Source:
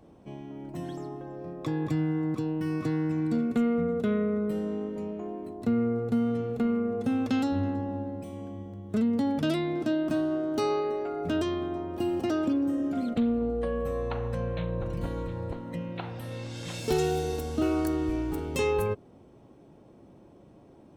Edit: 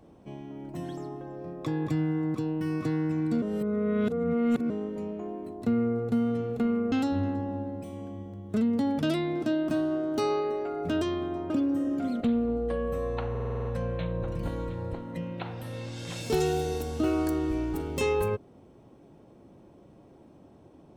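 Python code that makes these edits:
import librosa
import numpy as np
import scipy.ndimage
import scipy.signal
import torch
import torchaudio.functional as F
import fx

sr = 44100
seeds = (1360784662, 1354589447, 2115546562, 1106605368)

y = fx.edit(x, sr, fx.reverse_span(start_s=3.42, length_s=1.28),
    fx.cut(start_s=6.92, length_s=0.4),
    fx.cut(start_s=11.9, length_s=0.53),
    fx.stutter(start_s=14.23, slice_s=0.05, count=8), tone=tone)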